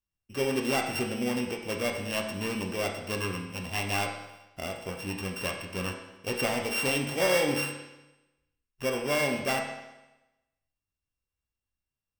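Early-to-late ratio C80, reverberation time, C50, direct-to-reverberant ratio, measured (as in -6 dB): 7.0 dB, 1.0 s, 5.0 dB, 0.5 dB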